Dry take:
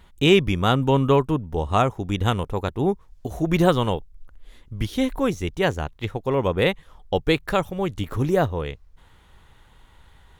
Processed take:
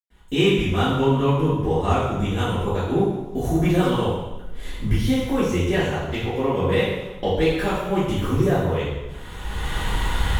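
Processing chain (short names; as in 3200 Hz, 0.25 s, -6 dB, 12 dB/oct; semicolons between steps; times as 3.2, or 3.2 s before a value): recorder AGC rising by 25 dB/s; in parallel at -10 dB: hard clip -15 dBFS, distortion -11 dB; on the sum: reverb RT60 1.0 s, pre-delay 0.102 s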